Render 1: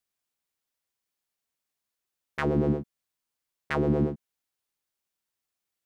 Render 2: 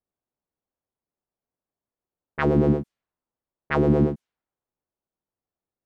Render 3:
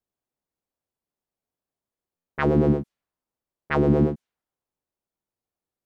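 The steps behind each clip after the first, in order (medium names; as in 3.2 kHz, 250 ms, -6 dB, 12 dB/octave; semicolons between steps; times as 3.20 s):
level-controlled noise filter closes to 750 Hz, open at -25 dBFS; trim +5.5 dB
wow and flutter 26 cents; buffer glitch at 2.16 s, samples 512, times 8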